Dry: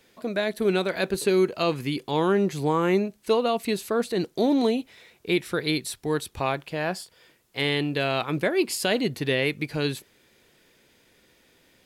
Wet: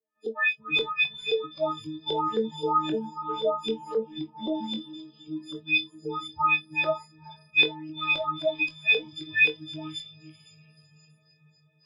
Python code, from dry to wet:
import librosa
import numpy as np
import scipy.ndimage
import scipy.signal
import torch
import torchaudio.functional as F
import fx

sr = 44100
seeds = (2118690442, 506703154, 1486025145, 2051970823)

p1 = fx.freq_snap(x, sr, grid_st=6)
p2 = scipy.signal.sosfilt(scipy.signal.butter(2, 80.0, 'highpass', fs=sr, output='sos'), p1)
p3 = fx.quant_float(p2, sr, bits=2)
p4 = p2 + (p3 * librosa.db_to_amplitude(-9.5))
p5 = fx.rider(p4, sr, range_db=3, speed_s=0.5)
p6 = fx.filter_lfo_lowpass(p5, sr, shape='saw_up', hz=3.8, low_hz=400.0, high_hz=4200.0, q=4.8)
p7 = fx.comb_fb(p6, sr, f0_hz=250.0, decay_s=0.24, harmonics='all', damping=0.0, mix_pct=70)
p8 = p7 + fx.echo_diffused(p7, sr, ms=472, feedback_pct=72, wet_db=-10.0, dry=0)
p9 = fx.noise_reduce_blind(p8, sr, reduce_db=29)
p10 = fx.spacing_loss(p9, sr, db_at_10k=26, at=(3.94, 4.55))
p11 = fx.doubler(p10, sr, ms=22.0, db=-8)
y = p11 * librosa.db_to_amplitude(-5.0)